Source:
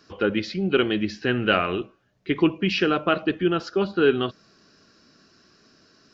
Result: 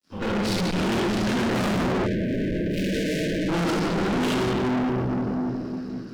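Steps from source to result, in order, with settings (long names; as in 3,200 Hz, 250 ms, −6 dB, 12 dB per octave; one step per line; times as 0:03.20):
0:01.34–0:03.42: running median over 25 samples
parametric band 210 Hz +13 dB 0.58 octaves
harmonic generator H 3 −31 dB, 8 −25 dB, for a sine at −4.5 dBFS
compressor whose output falls as the input rises −21 dBFS, ratio −1
rectangular room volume 160 cubic metres, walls hard, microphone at 2.6 metres
tube saturation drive 22 dB, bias 0.35
dead-zone distortion −46 dBFS
0:02.06–0:03.49: time-frequency box erased 650–1,500 Hz
multiband upward and downward expander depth 70%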